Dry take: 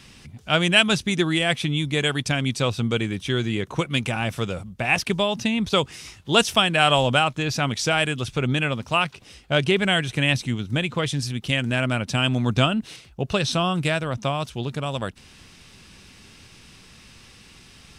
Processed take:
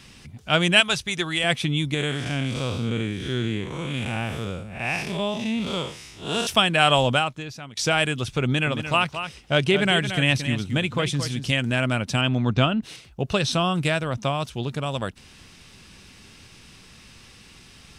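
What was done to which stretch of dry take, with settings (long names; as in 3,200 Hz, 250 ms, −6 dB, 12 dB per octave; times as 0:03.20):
0:00.80–0:01.44: parametric band 240 Hz −12.5 dB 1.4 octaves
0:01.94–0:06.47: spectrum smeared in time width 164 ms
0:07.09–0:07.77: fade out quadratic, to −17.5 dB
0:08.44–0:11.52: single-tap delay 224 ms −9.5 dB
0:12.21–0:12.83: high-frequency loss of the air 120 metres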